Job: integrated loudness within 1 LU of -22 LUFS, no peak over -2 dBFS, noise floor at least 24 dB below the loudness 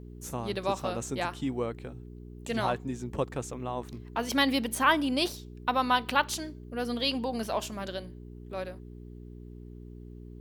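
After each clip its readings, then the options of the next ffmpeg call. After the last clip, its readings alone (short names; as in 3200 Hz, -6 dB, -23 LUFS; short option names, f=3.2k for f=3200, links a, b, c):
hum 60 Hz; harmonics up to 420 Hz; hum level -43 dBFS; loudness -30.5 LUFS; peak -9.0 dBFS; loudness target -22.0 LUFS
-> -af "bandreject=f=60:t=h:w=4,bandreject=f=120:t=h:w=4,bandreject=f=180:t=h:w=4,bandreject=f=240:t=h:w=4,bandreject=f=300:t=h:w=4,bandreject=f=360:t=h:w=4,bandreject=f=420:t=h:w=4"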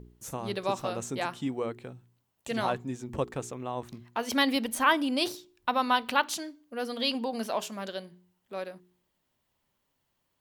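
hum none; loudness -30.5 LUFS; peak -9.0 dBFS; loudness target -22.0 LUFS
-> -af "volume=8.5dB,alimiter=limit=-2dB:level=0:latency=1"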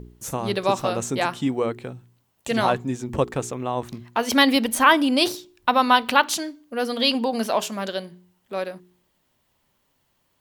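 loudness -22.5 LUFS; peak -2.0 dBFS; noise floor -69 dBFS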